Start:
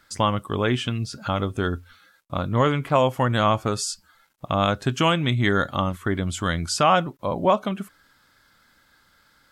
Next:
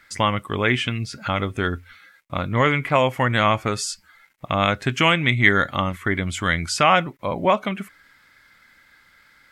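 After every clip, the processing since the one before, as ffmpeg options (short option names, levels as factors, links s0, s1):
-af "equalizer=f=2100:t=o:w=0.61:g=13.5"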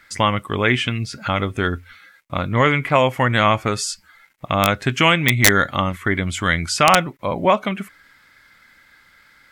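-af "aeval=exprs='(mod(1.5*val(0)+1,2)-1)/1.5':c=same,volume=1.33"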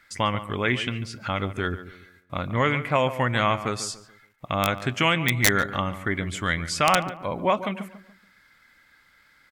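-filter_complex "[0:a]asplit=2[s0][s1];[s1]adelay=143,lowpass=f=1800:p=1,volume=0.237,asplit=2[s2][s3];[s3]adelay=143,lowpass=f=1800:p=1,volume=0.37,asplit=2[s4][s5];[s5]adelay=143,lowpass=f=1800:p=1,volume=0.37,asplit=2[s6][s7];[s7]adelay=143,lowpass=f=1800:p=1,volume=0.37[s8];[s0][s2][s4][s6][s8]amix=inputs=5:normalize=0,volume=0.473"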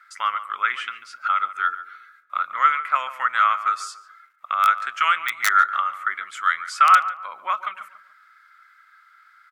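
-af "highpass=f=1300:t=q:w=11,volume=0.531"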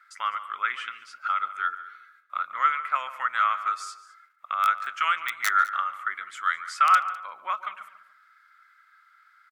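-af "aecho=1:1:204:0.106,volume=0.562"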